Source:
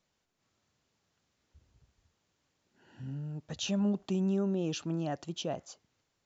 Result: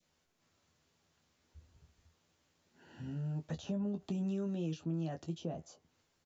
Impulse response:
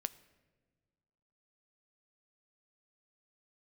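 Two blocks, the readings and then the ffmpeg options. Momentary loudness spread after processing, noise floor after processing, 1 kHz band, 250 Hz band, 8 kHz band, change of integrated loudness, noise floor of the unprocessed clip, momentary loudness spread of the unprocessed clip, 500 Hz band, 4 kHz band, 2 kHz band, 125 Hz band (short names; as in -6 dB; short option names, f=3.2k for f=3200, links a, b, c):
7 LU, -78 dBFS, -8.5 dB, -5.0 dB, n/a, -5.0 dB, -80 dBFS, 12 LU, -7.0 dB, -13.0 dB, -9.0 dB, -2.0 dB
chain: -filter_complex "[0:a]adynamicequalizer=threshold=0.00224:dfrequency=1100:dqfactor=1.1:tfrequency=1100:tqfactor=1.1:attack=5:release=100:ratio=0.375:range=2.5:mode=cutabove:tftype=bell,aecho=1:1:12|25:0.531|0.316,acrossover=split=200|1200[a][b][c];[a]acompressor=threshold=-40dB:ratio=4[d];[b]acompressor=threshold=-42dB:ratio=4[e];[c]acompressor=threshold=-58dB:ratio=4[f];[d][e][f]amix=inputs=3:normalize=0,volume=1dB"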